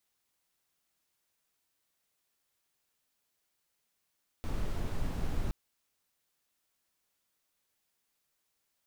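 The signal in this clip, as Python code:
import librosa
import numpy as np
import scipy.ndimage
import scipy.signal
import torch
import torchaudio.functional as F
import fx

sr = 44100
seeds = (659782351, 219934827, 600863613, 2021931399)

y = fx.noise_colour(sr, seeds[0], length_s=1.07, colour='brown', level_db=-31.5)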